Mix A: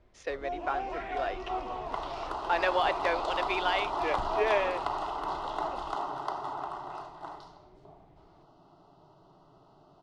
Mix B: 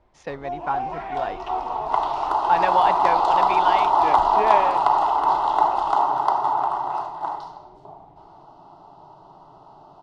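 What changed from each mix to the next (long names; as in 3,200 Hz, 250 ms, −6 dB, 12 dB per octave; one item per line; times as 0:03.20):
speech: remove high-pass filter 350 Hz 24 dB per octave
second sound +6.0 dB
master: add parametric band 880 Hz +12 dB 0.62 octaves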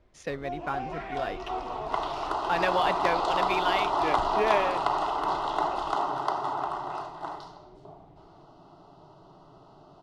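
speech: remove high-frequency loss of the air 65 metres
master: add parametric band 880 Hz −12 dB 0.62 octaves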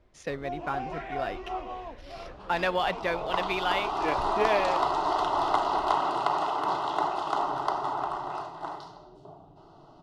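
second sound: entry +1.40 s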